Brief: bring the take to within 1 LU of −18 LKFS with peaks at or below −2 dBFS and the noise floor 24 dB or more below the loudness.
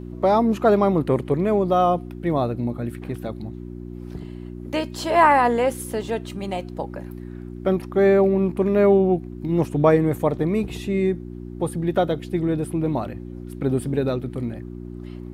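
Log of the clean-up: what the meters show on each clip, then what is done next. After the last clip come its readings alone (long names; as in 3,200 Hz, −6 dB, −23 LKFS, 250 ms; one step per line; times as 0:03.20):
mains hum 60 Hz; hum harmonics up to 360 Hz; level of the hum −33 dBFS; integrated loudness −21.5 LKFS; sample peak −3.0 dBFS; target loudness −18.0 LKFS
→ hum removal 60 Hz, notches 6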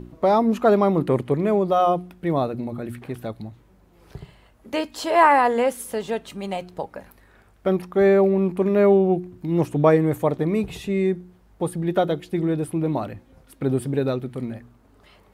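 mains hum none found; integrated loudness −21.5 LKFS; sample peak −3.5 dBFS; target loudness −18.0 LKFS
→ level +3.5 dB
brickwall limiter −2 dBFS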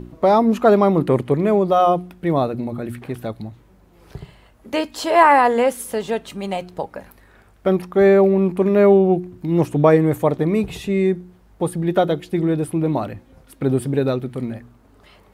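integrated loudness −18.0 LKFS; sample peak −2.0 dBFS; background noise floor −52 dBFS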